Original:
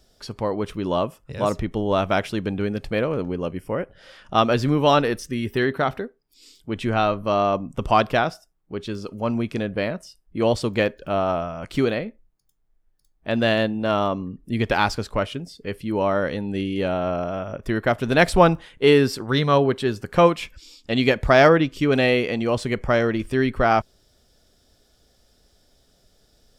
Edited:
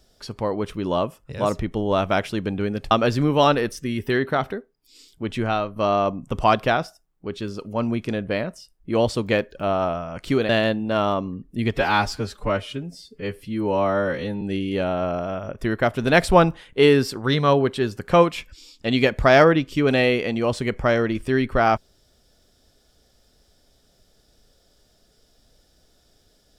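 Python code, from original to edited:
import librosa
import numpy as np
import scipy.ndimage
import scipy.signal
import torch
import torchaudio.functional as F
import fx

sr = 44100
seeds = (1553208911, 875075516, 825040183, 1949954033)

y = fx.edit(x, sr, fx.cut(start_s=2.91, length_s=1.47),
    fx.fade_out_to(start_s=6.81, length_s=0.42, floor_db=-7.0),
    fx.cut(start_s=11.96, length_s=1.47),
    fx.stretch_span(start_s=14.67, length_s=1.79, factor=1.5), tone=tone)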